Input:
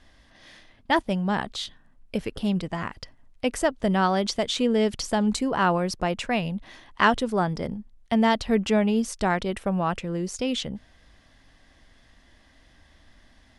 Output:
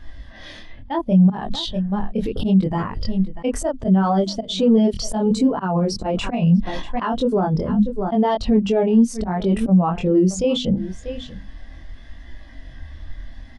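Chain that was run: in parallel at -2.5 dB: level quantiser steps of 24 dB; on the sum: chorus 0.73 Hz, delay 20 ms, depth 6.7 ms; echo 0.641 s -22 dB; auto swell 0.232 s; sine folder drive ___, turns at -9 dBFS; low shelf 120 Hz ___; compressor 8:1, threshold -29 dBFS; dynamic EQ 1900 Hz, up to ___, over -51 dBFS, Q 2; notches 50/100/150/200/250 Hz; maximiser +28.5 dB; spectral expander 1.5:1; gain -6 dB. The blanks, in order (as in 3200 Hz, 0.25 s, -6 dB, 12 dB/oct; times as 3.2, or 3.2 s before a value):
3 dB, +3.5 dB, -5 dB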